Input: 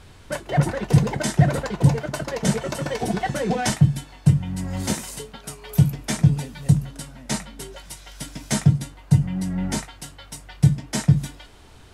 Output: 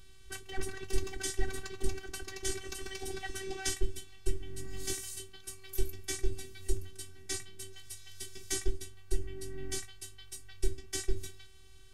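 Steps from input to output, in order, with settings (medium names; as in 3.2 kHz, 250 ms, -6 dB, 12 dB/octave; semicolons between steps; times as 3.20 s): amplifier tone stack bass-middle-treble 6-0-2; robot voice 382 Hz; trim +10 dB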